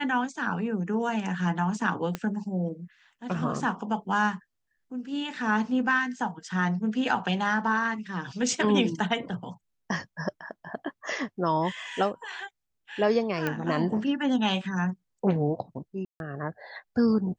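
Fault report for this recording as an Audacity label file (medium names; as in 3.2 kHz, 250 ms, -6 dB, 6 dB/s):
2.150000	2.150000	pop -16 dBFS
13.470000	13.470000	pop -15 dBFS
16.050000	16.200000	dropout 151 ms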